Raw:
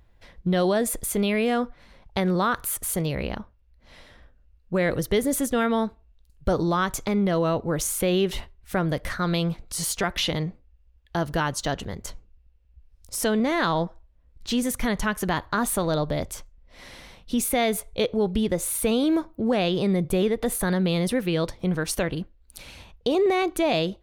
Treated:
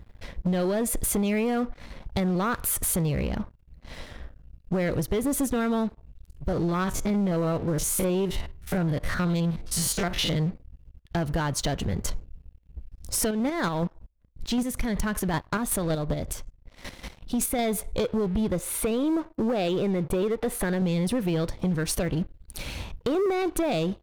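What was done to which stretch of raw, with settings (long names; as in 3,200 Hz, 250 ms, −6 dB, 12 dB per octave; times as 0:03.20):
0:06.48–0:10.36: spectrum averaged block by block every 50 ms
0:13.26–0:17.59: square-wave tremolo 5.3 Hz, depth 60%, duty 25%
0:18.59–0:20.82: bass and treble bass −8 dB, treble −8 dB
whole clip: low-shelf EQ 380 Hz +6.5 dB; downward compressor 5 to 1, threshold −27 dBFS; leveller curve on the samples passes 3; level −5 dB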